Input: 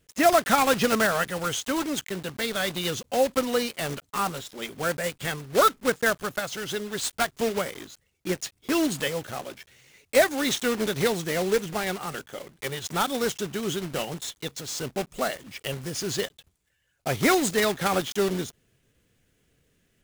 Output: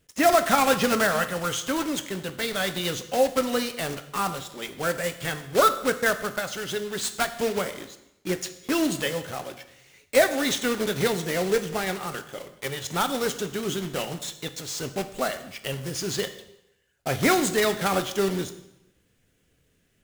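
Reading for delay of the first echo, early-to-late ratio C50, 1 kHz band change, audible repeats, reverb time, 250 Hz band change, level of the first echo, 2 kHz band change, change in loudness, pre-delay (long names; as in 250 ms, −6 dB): no echo audible, 12.5 dB, +0.5 dB, no echo audible, 0.85 s, +0.5 dB, no echo audible, +0.5 dB, +0.5 dB, 4 ms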